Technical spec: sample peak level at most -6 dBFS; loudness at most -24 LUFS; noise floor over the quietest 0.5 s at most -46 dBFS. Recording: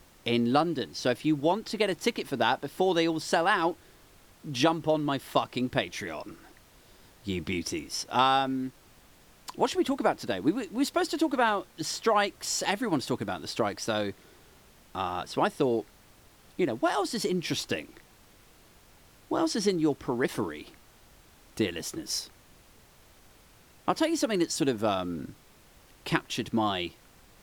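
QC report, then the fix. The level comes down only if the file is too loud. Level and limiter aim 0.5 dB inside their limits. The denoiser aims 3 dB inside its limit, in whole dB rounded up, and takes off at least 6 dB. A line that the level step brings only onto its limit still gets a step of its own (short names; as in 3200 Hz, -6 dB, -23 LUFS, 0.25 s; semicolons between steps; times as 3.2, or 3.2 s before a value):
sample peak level -9.0 dBFS: OK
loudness -29.0 LUFS: OK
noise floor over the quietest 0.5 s -57 dBFS: OK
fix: none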